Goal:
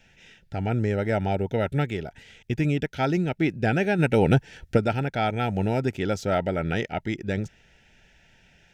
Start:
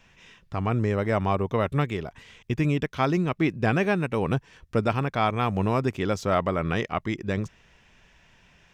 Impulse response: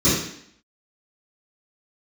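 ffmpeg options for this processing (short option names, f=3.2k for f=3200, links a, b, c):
-filter_complex "[0:a]asplit=3[a][b][c];[a]afade=t=out:st=3.98:d=0.02[d];[b]acontrast=70,afade=t=in:st=3.98:d=0.02,afade=t=out:st=4.76:d=0.02[e];[c]afade=t=in:st=4.76:d=0.02[f];[d][e][f]amix=inputs=3:normalize=0,asuperstop=centerf=1100:order=12:qfactor=2.9"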